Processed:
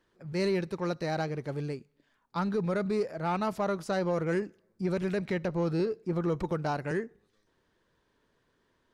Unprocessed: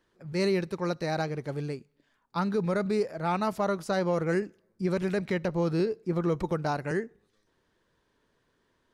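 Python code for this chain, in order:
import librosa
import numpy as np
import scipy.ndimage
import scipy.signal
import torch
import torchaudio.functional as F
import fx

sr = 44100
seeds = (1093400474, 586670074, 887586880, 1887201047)

p1 = fx.high_shelf(x, sr, hz=9100.0, db=-5.0)
p2 = 10.0 ** (-28.5 / 20.0) * np.tanh(p1 / 10.0 ** (-28.5 / 20.0))
p3 = p1 + F.gain(torch.from_numpy(p2), -4.0).numpy()
y = F.gain(torch.from_numpy(p3), -4.5).numpy()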